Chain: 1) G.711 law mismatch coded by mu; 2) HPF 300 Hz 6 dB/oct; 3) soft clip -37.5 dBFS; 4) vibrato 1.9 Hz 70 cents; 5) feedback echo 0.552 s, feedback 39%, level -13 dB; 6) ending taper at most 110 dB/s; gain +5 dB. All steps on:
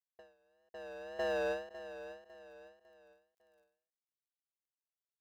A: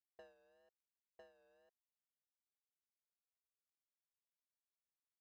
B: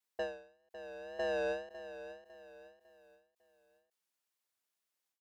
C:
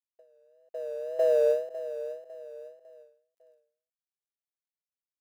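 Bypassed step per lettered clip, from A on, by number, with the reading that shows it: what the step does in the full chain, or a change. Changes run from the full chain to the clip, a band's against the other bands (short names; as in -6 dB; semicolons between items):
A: 5, momentary loudness spread change -18 LU; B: 1, distortion -26 dB; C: 3, distortion -7 dB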